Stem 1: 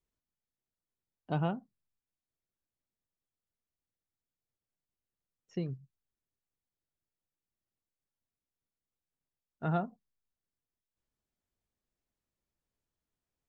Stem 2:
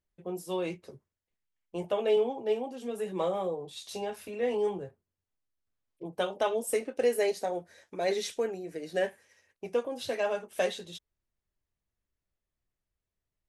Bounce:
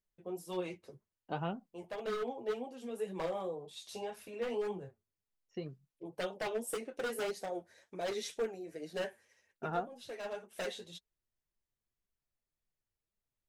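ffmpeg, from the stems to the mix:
ffmpeg -i stem1.wav -i stem2.wav -filter_complex "[0:a]agate=range=-11dB:threshold=-60dB:ratio=16:detection=peak,equalizer=frequency=74:width=0.47:gain=-14.5,volume=3dB,asplit=2[link_01][link_02];[1:a]aeval=exprs='0.0631*(abs(mod(val(0)/0.0631+3,4)-2)-1)':channel_layout=same,volume=-2dB[link_03];[link_02]apad=whole_len=594626[link_04];[link_03][link_04]sidechaincompress=threshold=-34dB:ratio=8:attack=22:release=1180[link_05];[link_01][link_05]amix=inputs=2:normalize=0,flanger=delay=4.2:depth=5.4:regen=41:speed=1.9:shape=triangular" out.wav

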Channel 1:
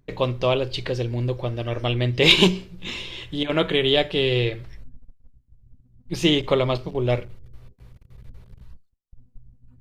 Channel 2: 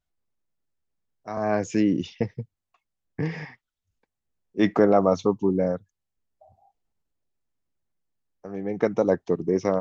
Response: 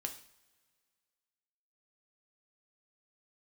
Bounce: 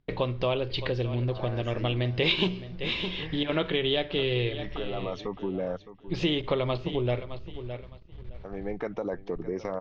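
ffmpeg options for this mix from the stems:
-filter_complex "[0:a]agate=range=-12dB:threshold=-45dB:ratio=16:detection=peak,volume=1dB,asplit=3[link_01][link_02][link_03];[link_02]volume=-17dB[link_04];[1:a]equalizer=frequency=190:width_type=o:width=2.5:gain=-7,alimiter=limit=-21dB:level=0:latency=1:release=43,volume=0.5dB,asplit=2[link_05][link_06];[link_06]volume=-16dB[link_07];[link_03]apad=whole_len=432549[link_08];[link_05][link_08]sidechaincompress=threshold=-26dB:ratio=8:attack=33:release=1240[link_09];[link_04][link_07]amix=inputs=2:normalize=0,aecho=0:1:613|1226|1839:1|0.19|0.0361[link_10];[link_01][link_09][link_10]amix=inputs=3:normalize=0,lowpass=frequency=4400:width=0.5412,lowpass=frequency=4400:width=1.3066,acompressor=threshold=-27dB:ratio=2.5"

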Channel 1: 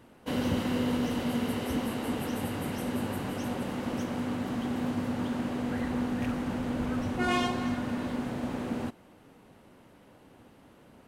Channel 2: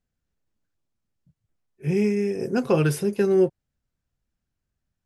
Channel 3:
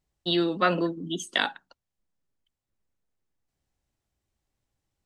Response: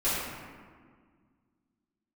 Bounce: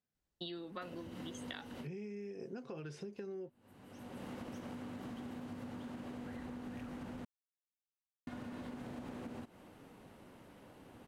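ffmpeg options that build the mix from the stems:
-filter_complex "[0:a]acompressor=threshold=-37dB:ratio=5,adelay=550,volume=-1.5dB,asplit=3[link_01][link_02][link_03];[link_01]atrim=end=7.25,asetpts=PTS-STARTPTS,afade=type=out:start_time=7.246:duration=0.004:curve=hsin[link_04];[link_02]atrim=start=7.25:end=8.27,asetpts=PTS-STARTPTS,volume=0[link_05];[link_03]atrim=start=8.27,asetpts=PTS-STARTPTS,afade=type=in:duration=0.004:curve=hsin[link_06];[link_04][link_05][link_06]concat=n=3:v=0:a=1[link_07];[1:a]lowpass=frequency=6500:width=0.5412,lowpass=frequency=6500:width=1.3066,alimiter=limit=-17dB:level=0:latency=1:release=65,highpass=140,volume=-7.5dB,asplit=2[link_08][link_09];[2:a]adelay=150,volume=-9dB[link_10];[link_09]apad=whole_len=512738[link_11];[link_07][link_11]sidechaincompress=threshold=-57dB:ratio=12:attack=44:release=499[link_12];[link_12][link_08][link_10]amix=inputs=3:normalize=0,acompressor=threshold=-42dB:ratio=12"

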